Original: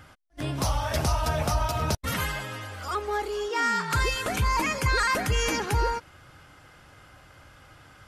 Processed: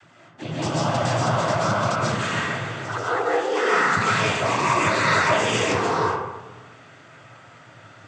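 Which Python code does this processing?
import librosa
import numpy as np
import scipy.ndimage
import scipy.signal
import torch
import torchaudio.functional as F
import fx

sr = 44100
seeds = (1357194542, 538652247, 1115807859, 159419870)

y = fx.peak_eq(x, sr, hz=5100.0, db=-4.0, octaves=0.33)
y = fx.noise_vocoder(y, sr, seeds[0], bands=16)
y = fx.rev_freeverb(y, sr, rt60_s=1.1, hf_ratio=0.4, predelay_ms=95, drr_db=-6.0)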